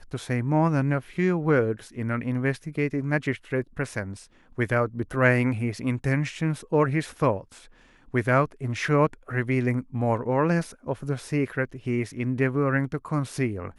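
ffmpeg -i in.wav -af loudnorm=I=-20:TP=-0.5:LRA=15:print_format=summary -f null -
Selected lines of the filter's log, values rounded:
Input Integrated:    -26.3 LUFS
Input True Peak:      -6.8 dBTP
Input LRA:             2.2 LU
Input Threshold:     -36.4 LUFS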